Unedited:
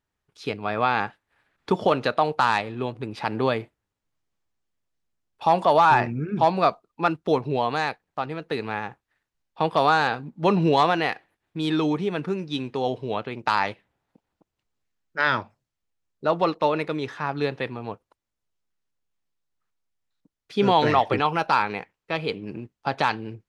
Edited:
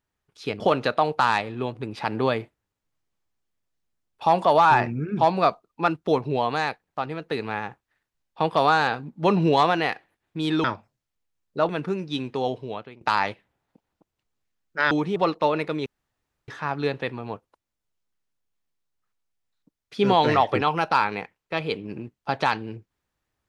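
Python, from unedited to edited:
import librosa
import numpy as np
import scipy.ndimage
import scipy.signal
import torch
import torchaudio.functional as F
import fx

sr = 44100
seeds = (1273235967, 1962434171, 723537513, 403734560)

y = fx.edit(x, sr, fx.cut(start_s=0.6, length_s=1.2),
    fx.swap(start_s=11.84, length_s=0.25, other_s=15.31, other_length_s=1.05),
    fx.fade_out_to(start_s=12.82, length_s=0.59, floor_db=-17.5),
    fx.insert_room_tone(at_s=17.06, length_s=0.62), tone=tone)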